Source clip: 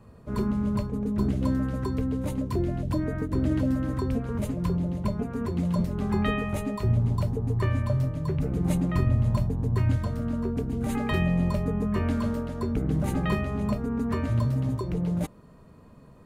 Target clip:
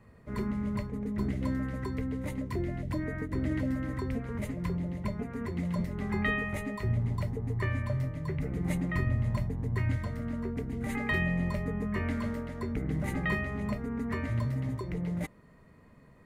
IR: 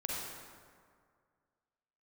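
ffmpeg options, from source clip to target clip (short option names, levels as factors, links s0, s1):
-af "equalizer=f=2000:t=o:w=0.37:g=15,volume=0.501"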